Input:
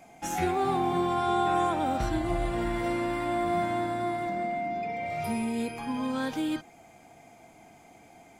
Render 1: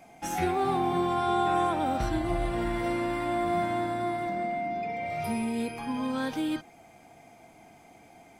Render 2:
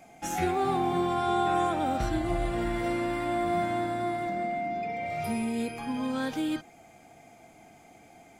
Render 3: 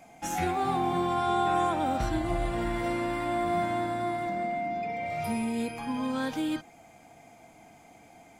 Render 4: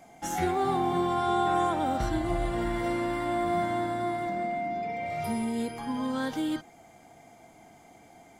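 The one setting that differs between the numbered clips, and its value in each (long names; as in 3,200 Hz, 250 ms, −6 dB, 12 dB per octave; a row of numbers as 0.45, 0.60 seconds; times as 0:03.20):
notch filter, centre frequency: 7,000, 980, 380, 2,500 Hertz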